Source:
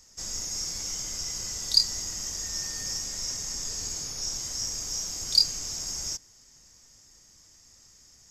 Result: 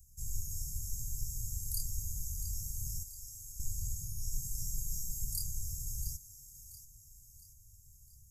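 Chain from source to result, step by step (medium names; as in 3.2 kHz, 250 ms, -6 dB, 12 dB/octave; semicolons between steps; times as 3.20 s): inverse Chebyshev band-stop 570–2600 Hz, stop band 80 dB; 3.03–3.60 s: amplifier tone stack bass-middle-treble 5-5-5; 4.31–5.25 s: comb 6.1 ms, depth 58%; on a send: thinning echo 682 ms, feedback 48%, high-pass 420 Hz, level -11.5 dB; on the sum: trim +8 dB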